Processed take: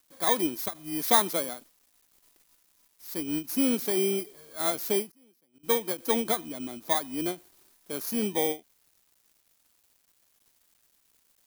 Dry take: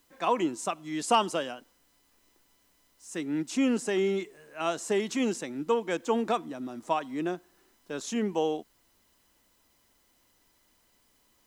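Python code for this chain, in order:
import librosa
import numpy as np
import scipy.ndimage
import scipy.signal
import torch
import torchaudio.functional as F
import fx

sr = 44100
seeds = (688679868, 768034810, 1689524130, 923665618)

y = fx.bit_reversed(x, sr, seeds[0], block=16)
y = fx.quant_dither(y, sr, seeds[1], bits=10, dither='none')
y = fx.high_shelf(y, sr, hz=5200.0, db=5.0)
y = fx.gate_flip(y, sr, shuts_db=-29.0, range_db=-34, at=(5.1, 5.63), fade=0.02)
y = fx.end_taper(y, sr, db_per_s=280.0)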